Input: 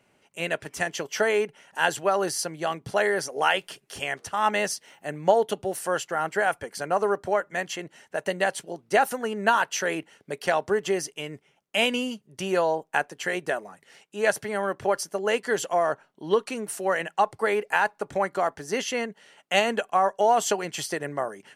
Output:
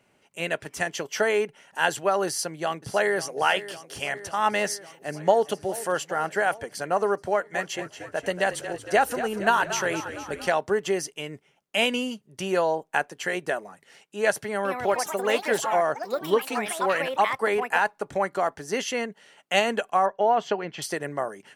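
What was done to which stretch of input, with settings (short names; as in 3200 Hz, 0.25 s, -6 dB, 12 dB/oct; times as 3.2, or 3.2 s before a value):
2.27–3.37 echo throw 0.55 s, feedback 75%, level -15 dB
4.71–5.51 echo throw 0.41 s, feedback 65%, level -16.5 dB
7.31–10.48 frequency-shifting echo 0.23 s, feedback 64%, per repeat -35 Hz, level -11.5 dB
14.46–18.42 echoes that change speed 0.188 s, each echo +4 st, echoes 3, each echo -6 dB
20.06–20.82 air absorption 260 m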